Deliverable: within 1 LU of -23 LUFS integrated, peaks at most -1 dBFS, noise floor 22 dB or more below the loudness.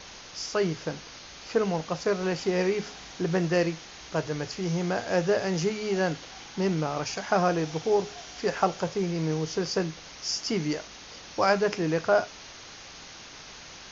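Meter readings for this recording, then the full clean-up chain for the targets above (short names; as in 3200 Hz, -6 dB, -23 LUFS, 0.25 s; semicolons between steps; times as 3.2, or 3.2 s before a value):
noise floor -46 dBFS; noise floor target -50 dBFS; loudness -28.0 LUFS; peak -9.5 dBFS; loudness target -23.0 LUFS
-> noise print and reduce 6 dB; gain +5 dB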